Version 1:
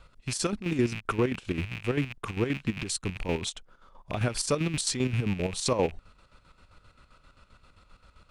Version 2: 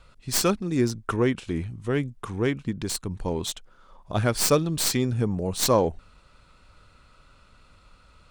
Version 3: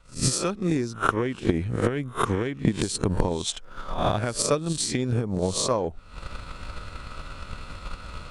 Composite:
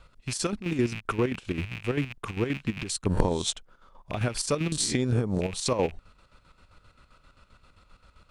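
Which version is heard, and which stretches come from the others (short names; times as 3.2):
1
3.06–3.53 from 3
4.72–5.41 from 3
not used: 2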